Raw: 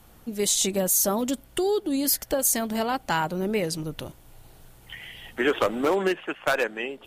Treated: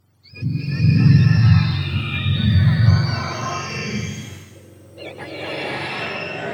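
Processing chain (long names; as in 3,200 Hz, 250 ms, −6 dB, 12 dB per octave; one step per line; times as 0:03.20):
frequency axis turned over on the octave scale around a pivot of 970 Hz
speed change +8%
slow-attack reverb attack 610 ms, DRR −11 dB
level −9 dB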